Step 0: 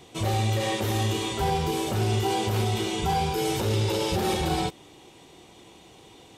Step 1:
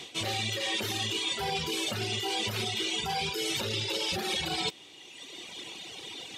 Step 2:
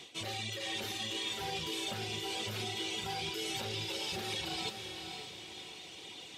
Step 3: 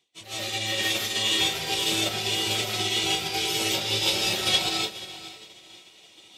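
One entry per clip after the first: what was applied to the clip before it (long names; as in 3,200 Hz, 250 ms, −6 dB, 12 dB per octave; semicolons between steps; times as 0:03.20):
reverb reduction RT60 1.4 s; meter weighting curve D; reversed playback; downward compressor 6 to 1, threshold −35 dBFS, peak gain reduction 13.5 dB; reversed playback; level +5.5 dB
feedback delay with all-pass diffusion 527 ms, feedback 45%, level −6 dB; level −7.5 dB
high-shelf EQ 5,800 Hz +7 dB; comb and all-pass reverb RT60 0.43 s, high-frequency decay 0.7×, pre-delay 110 ms, DRR −6 dB; expander for the loud parts 2.5 to 1, over −50 dBFS; level +9 dB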